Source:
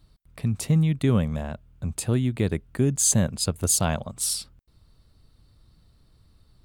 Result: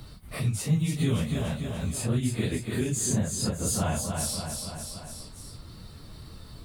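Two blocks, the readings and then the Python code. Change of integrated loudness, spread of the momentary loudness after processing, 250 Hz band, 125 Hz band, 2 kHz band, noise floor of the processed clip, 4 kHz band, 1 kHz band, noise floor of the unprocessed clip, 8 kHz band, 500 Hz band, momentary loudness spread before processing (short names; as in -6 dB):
-4.5 dB, 19 LU, -3.0 dB, -3.0 dB, -0.5 dB, -46 dBFS, -2.5 dB, -2.0 dB, -61 dBFS, -5.5 dB, -4.0 dB, 11 LU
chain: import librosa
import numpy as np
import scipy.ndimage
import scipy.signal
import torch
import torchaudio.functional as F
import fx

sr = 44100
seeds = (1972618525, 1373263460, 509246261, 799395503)

p1 = fx.phase_scramble(x, sr, seeds[0], window_ms=100)
p2 = p1 + fx.echo_feedback(p1, sr, ms=288, feedback_pct=39, wet_db=-8.5, dry=0)
p3 = fx.band_squash(p2, sr, depth_pct=70)
y = p3 * librosa.db_to_amplitude(-4.5)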